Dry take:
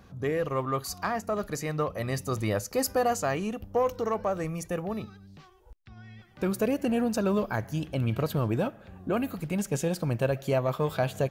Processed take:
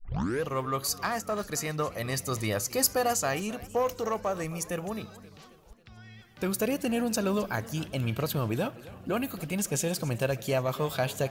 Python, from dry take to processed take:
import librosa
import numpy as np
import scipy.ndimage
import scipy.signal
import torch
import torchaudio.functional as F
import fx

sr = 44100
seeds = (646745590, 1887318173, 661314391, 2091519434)

y = fx.tape_start_head(x, sr, length_s=0.43)
y = fx.high_shelf(y, sr, hz=2300.0, db=10.0)
y = fx.echo_warbled(y, sr, ms=268, feedback_pct=55, rate_hz=2.8, cents=155, wet_db=-18.5)
y = y * 10.0 ** (-2.5 / 20.0)